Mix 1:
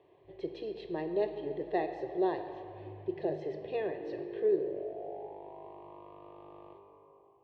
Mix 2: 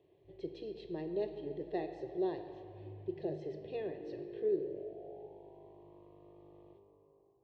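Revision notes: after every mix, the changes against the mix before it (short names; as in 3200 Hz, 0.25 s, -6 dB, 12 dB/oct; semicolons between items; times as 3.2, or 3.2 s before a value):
background: add running mean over 24 samples; master: add bell 1200 Hz -12 dB 2.5 oct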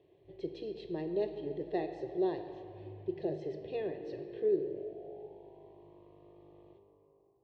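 speech +3.0 dB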